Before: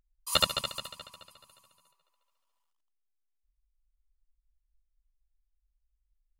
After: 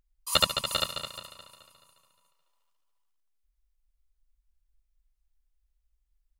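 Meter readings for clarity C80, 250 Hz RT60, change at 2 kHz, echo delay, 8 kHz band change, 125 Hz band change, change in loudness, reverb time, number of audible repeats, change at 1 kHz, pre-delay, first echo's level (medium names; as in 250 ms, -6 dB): no reverb, no reverb, +3.0 dB, 395 ms, +3.0 dB, +3.0 dB, +1.5 dB, no reverb, 1, +3.0 dB, no reverb, -6.0 dB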